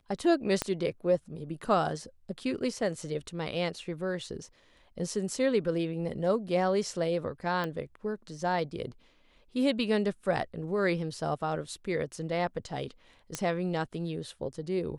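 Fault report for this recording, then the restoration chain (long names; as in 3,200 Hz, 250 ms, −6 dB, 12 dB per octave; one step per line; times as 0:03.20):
0:00.62: click −13 dBFS
0:07.64: click −21 dBFS
0:13.35: click −15 dBFS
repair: click removal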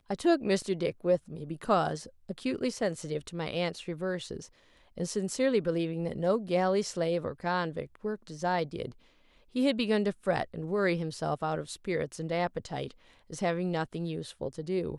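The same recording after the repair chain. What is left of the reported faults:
0:00.62: click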